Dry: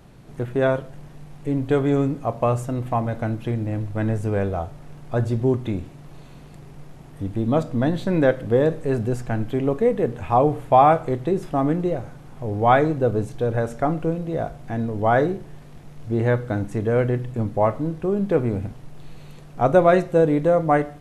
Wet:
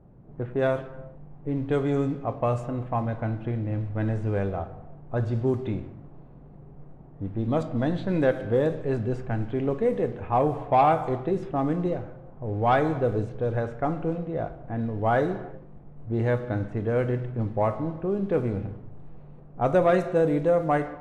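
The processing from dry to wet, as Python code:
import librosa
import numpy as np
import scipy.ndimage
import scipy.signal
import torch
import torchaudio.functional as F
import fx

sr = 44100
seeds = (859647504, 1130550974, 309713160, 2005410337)

y = fx.rev_gated(x, sr, seeds[0], gate_ms=420, shape='falling', drr_db=10.5)
y = 10.0 ** (-5.5 / 20.0) * np.tanh(y / 10.0 ** (-5.5 / 20.0))
y = fx.env_lowpass(y, sr, base_hz=710.0, full_db=-14.0)
y = F.gain(torch.from_numpy(y), -4.5).numpy()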